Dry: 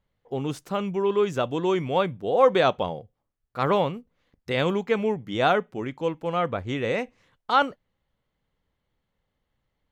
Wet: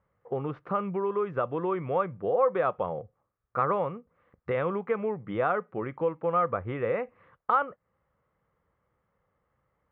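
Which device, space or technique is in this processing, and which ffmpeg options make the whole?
bass amplifier: -af "acompressor=threshold=0.0224:ratio=3,highpass=63,equalizer=f=260:t=q:w=4:g=-6,equalizer=f=510:t=q:w=4:g=5,equalizer=f=1200:t=q:w=4:g=10,lowpass=f=2100:w=0.5412,lowpass=f=2100:w=1.3066,volume=1.41"

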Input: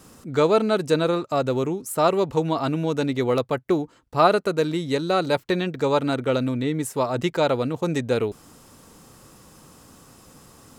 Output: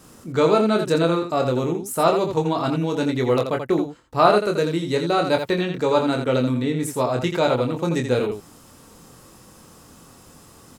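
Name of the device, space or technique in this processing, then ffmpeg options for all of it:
slapback doubling: -filter_complex "[0:a]asplit=3[s0][s1][s2];[s1]adelay=24,volume=0.562[s3];[s2]adelay=84,volume=0.447[s4];[s0][s3][s4]amix=inputs=3:normalize=0"

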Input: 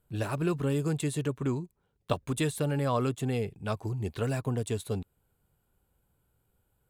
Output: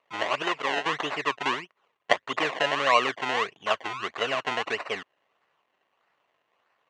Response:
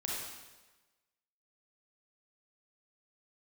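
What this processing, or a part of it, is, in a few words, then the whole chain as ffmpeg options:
circuit-bent sampling toy: -filter_complex "[0:a]asettb=1/sr,asplit=3[s0][s1][s2];[s0]atrim=end=0.424[s3];[s1]atrim=start=0.42:end=0.86,asetpts=PTS-STARTPTS,afade=t=in:d=0.004:c=qsin,afade=t=out:st=0.436:d=0.004:c=qsin,aemphasis=mode=production:type=bsi[s4];[s2]atrim=start=0.856[s5];[s3][s4]acrossfade=d=0.004:c1=hsin:c2=qsin[s6];[s6][s5]acrossfade=d=0.004:c1=qsin:c2=hsin,acrusher=samples=26:mix=1:aa=0.000001:lfo=1:lforange=26:lforate=1.6,highpass=540,equalizer=f=650:t=q:w=4:g=4,equalizer=f=1100:t=q:w=4:g=9,equalizer=f=1900:t=q:w=4:g=7,equalizer=f=2800:t=q:w=4:g=9,equalizer=f=5100:t=q:w=4:g=-7,lowpass=f=6000:w=0.5412,lowpass=f=6000:w=1.3066,volume=1.88"

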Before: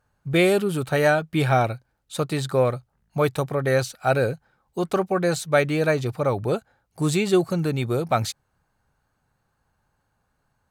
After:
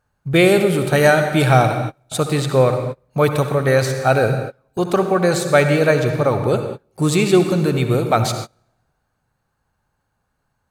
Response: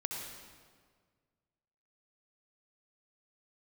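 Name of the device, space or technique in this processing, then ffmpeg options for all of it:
keyed gated reverb: -filter_complex "[0:a]asettb=1/sr,asplit=3[s0][s1][s2];[s0]atrim=end=0.844[s3];[s1]atrim=start=0.84:end=2.18,asetpts=PTS-STARTPTS,afade=t=in:d=0.004:c=qsin,afade=t=out:st=1.336:d=0.004:c=qsin,equalizer=f=8700:w=0.61:g=5[s4];[s2]atrim=start=2.176[s5];[s3][s4]acrossfade=d=0.004:c1=hsin:c2=qsin[s6];[s6][s5]acrossfade=d=0.004:c1=qsin:c2=hsin,asplit=3[s7][s8][s9];[1:a]atrim=start_sample=2205[s10];[s8][s10]afir=irnorm=-1:irlink=0[s11];[s9]apad=whole_len=472289[s12];[s11][s12]sidechaingate=range=0.0282:threshold=0.00501:ratio=16:detection=peak,volume=1[s13];[s7][s13]amix=inputs=2:normalize=0"

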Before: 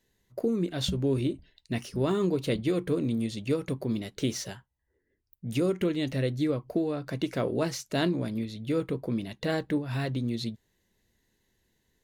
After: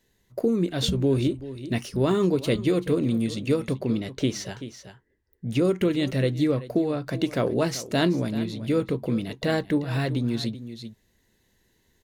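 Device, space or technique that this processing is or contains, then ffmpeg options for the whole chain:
ducked delay: -filter_complex "[0:a]asplit=3[s0][s1][s2];[s1]adelay=384,volume=0.75[s3];[s2]apad=whole_len=547809[s4];[s3][s4]sidechaincompress=threshold=0.0112:ratio=5:attack=16:release=1130[s5];[s0][s5]amix=inputs=2:normalize=0,asettb=1/sr,asplit=3[s6][s7][s8];[s6]atrim=end=3.754[s9];[s7]atrim=start=3.75:end=5.65,asetpts=PTS-STARTPTS,afade=t=in:d=0.004:c=qsin,afade=t=out:st=1.896:d=0.004:c=qsin,highshelf=f=7700:g=-11[s10];[s8]atrim=start=5.646[s11];[s9][s10]acrossfade=d=0.004:c1=hsin:c2=qsin[s12];[s12][s11]acrossfade=d=0.004:c1=qsin:c2=hsin,volume=1.68"

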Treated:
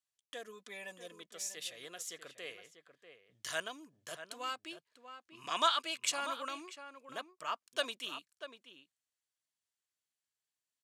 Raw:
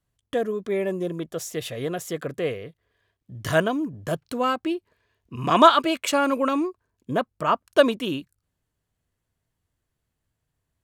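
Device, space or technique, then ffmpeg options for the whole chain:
piezo pickup straight into a mixer: -filter_complex "[0:a]lowpass=6800,aderivative,asettb=1/sr,asplit=3[s0][s1][s2];[s0]atrim=end=0.474[s3];[s1]atrim=start=0.47:end=1.22,asetpts=PTS-STARTPTS,afade=t=in:d=0.004:c=qsin,afade=t=out:st=0.746:d=0.004:c=qsin,aecho=1:1:4:0.75,atrim=end_sample=33075[s4];[s2]atrim=start=1.216[s5];[s3][s4]acrossfade=d=0.004:c1=hsin:c2=qsin[s6];[s6][s5]acrossfade=d=0.004:c1=qsin:c2=hsin,asplit=2[s7][s8];[s8]adelay=641.4,volume=0.316,highshelf=f=4000:g=-14.4[s9];[s7][s9]amix=inputs=2:normalize=0"

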